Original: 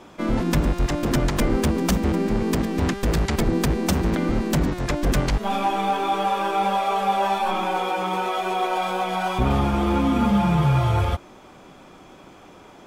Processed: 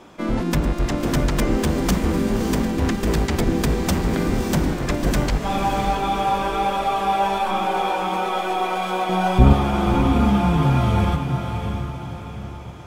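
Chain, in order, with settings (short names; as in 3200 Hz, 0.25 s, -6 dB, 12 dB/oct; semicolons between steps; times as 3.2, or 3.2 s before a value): 9.09–9.53 low shelf 390 Hz +11 dB; diffused feedback echo 0.608 s, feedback 46%, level -6 dB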